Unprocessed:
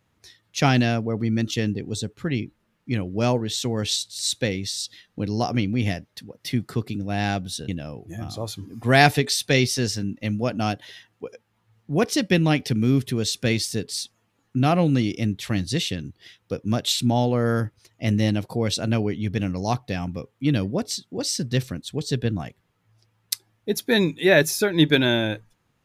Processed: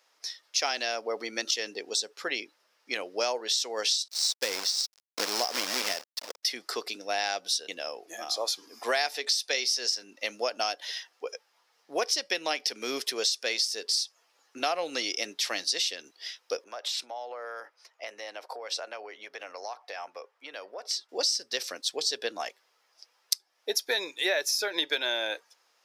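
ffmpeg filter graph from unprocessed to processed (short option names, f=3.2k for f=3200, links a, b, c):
-filter_complex "[0:a]asettb=1/sr,asplit=3[a][b][c];[a]atrim=end=4.084[d];[b]atrim=start=4.08:end=6.43,asetpts=PTS-STARTPTS,afade=t=in:d=0.004:c=qsin,afade=t=out:st=2.346:d=0.004:c=qsin,equalizer=f=180:w=0.87:g=9.5,acrusher=bits=3:mode=log:mix=0:aa=0.000001,aeval=exprs='sgn(val(0))*max(abs(val(0))-0.0133,0)':c=same[e];[c]atrim=start=6.426[f];[d][e]acrossfade=d=0.004:c1=hsin:c2=qsin[g];[g][f]acrossfade=d=0.004:c1=qsin:c2=hsin,asettb=1/sr,asplit=3[h][i][j];[h]atrim=end=16.644[k];[i]atrim=start=16.64:end=21.09,asetpts=PTS-STARTPTS,afade=t=in:d=0.004:c=qsin,afade=t=out:st=4.446:d=0.004:c=qsin,acrossover=split=470 2200:gain=0.158 1 0.224[l][m][n];[l][m][n]amix=inputs=3:normalize=0,acompressor=threshold=-35dB:ratio=16:attack=3.2:release=140:knee=1:detection=peak[o];[j]atrim=start=21.086[p];[k][o]acrossfade=d=0.004:c1=hsin:c2=qsin[q];[q][p]acrossfade=d=0.004:c1=qsin:c2=hsin,highpass=f=500:w=0.5412,highpass=f=500:w=1.3066,equalizer=f=5.2k:t=o:w=0.56:g=12.5,acompressor=threshold=-29dB:ratio=6,volume=3.5dB"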